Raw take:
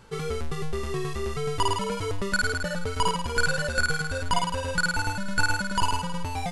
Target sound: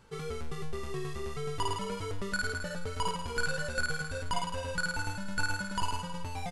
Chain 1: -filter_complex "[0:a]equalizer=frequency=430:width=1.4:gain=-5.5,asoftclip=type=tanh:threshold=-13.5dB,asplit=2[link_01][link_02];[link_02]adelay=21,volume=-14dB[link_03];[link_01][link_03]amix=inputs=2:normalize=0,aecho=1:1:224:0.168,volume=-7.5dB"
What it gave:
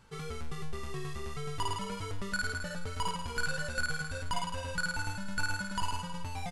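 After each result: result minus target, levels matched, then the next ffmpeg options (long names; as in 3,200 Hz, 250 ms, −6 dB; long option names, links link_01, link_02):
soft clipping: distortion +12 dB; 500 Hz band −3.5 dB
-filter_complex "[0:a]equalizer=frequency=430:width=1.4:gain=-5.5,asoftclip=type=tanh:threshold=-6.5dB,asplit=2[link_01][link_02];[link_02]adelay=21,volume=-14dB[link_03];[link_01][link_03]amix=inputs=2:normalize=0,aecho=1:1:224:0.168,volume=-7.5dB"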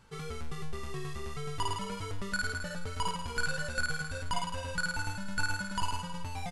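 500 Hz band −4.0 dB
-filter_complex "[0:a]asoftclip=type=tanh:threshold=-6.5dB,asplit=2[link_01][link_02];[link_02]adelay=21,volume=-14dB[link_03];[link_01][link_03]amix=inputs=2:normalize=0,aecho=1:1:224:0.168,volume=-7.5dB"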